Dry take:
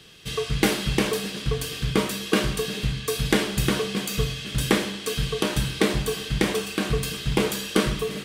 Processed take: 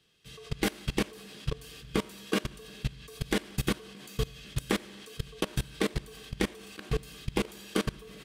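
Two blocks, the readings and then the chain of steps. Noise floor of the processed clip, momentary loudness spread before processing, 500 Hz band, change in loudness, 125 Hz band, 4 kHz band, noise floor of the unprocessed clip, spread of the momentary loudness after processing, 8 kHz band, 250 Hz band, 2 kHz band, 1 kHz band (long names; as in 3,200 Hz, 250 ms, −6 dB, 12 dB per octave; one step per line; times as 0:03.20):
−50 dBFS, 5 LU, −9.5 dB, −9.0 dB, −9.0 dB, −11.0 dB, −36 dBFS, 10 LU, −11.5 dB, −8.5 dB, −9.5 dB, −9.0 dB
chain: on a send: repeating echo 90 ms, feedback 47%, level −11 dB
on the sum: output level in coarse steps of 22 dB
level −3.5 dB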